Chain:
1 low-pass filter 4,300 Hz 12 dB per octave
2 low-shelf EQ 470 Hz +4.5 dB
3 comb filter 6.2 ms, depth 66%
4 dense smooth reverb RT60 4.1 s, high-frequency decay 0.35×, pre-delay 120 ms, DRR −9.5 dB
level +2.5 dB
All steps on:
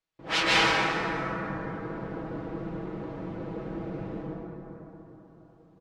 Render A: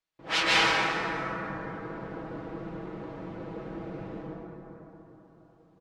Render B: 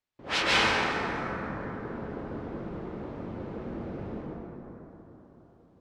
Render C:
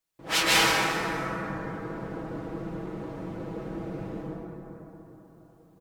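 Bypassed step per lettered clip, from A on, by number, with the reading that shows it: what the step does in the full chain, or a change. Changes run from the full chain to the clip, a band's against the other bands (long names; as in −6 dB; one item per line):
2, 125 Hz band −3.5 dB
3, change in integrated loudness −1.5 LU
1, 4 kHz band +2.0 dB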